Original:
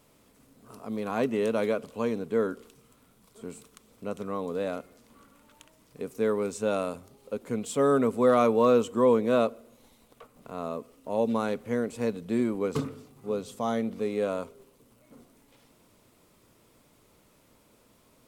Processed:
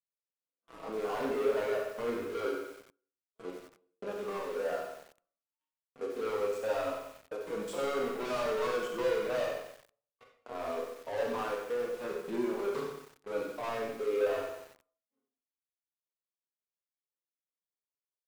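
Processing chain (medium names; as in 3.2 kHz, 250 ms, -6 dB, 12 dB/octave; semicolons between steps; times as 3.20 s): spectrogram pixelated in time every 50 ms; expander -49 dBFS; low-pass 1.2 kHz 6 dB/octave; reverb removal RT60 1.3 s; high-pass 470 Hz 12 dB/octave; waveshaping leveller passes 5; peak limiter -21.5 dBFS, peak gain reduction 4.5 dB; flange 0.24 Hz, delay 4.8 ms, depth 3.6 ms, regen -10%; speakerphone echo 90 ms, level -28 dB; reverberation RT60 0.55 s, pre-delay 25 ms, DRR 1 dB; bit-crushed delay 92 ms, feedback 55%, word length 7-bit, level -7 dB; trim -8 dB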